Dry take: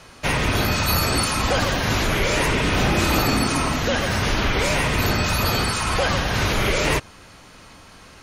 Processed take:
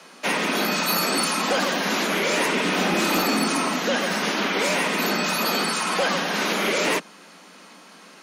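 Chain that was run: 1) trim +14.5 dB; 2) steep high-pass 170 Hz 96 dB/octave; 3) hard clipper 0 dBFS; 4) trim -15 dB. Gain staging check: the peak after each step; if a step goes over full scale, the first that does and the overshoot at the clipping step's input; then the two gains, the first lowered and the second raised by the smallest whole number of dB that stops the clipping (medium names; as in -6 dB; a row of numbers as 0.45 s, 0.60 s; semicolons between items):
+7.5 dBFS, +6.5 dBFS, 0.0 dBFS, -15.0 dBFS; step 1, 6.5 dB; step 1 +7.5 dB, step 4 -8 dB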